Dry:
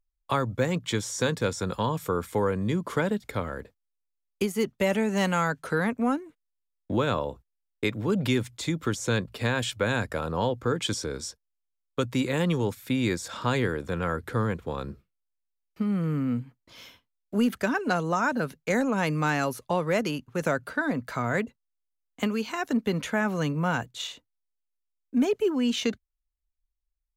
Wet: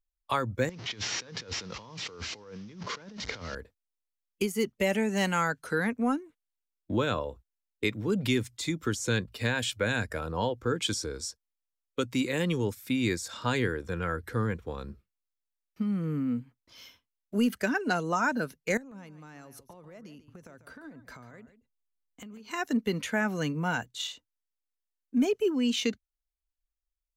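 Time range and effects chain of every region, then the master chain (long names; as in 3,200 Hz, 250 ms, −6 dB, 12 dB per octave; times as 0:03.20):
0:00.69–0:03.55: linear delta modulator 32 kbit/s, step −35 dBFS + high-pass filter 95 Hz + compressor whose output falls as the input rises −37 dBFS
0:18.77–0:22.51: tilt shelving filter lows +4 dB, about 720 Hz + downward compressor 16 to 1, threshold −37 dBFS + single-tap delay 143 ms −12.5 dB
whole clip: parametric band 160 Hz −4 dB 0.76 octaves; noise reduction from a noise print of the clip's start 6 dB; parametric band 590 Hz −2.5 dB 1.6 octaves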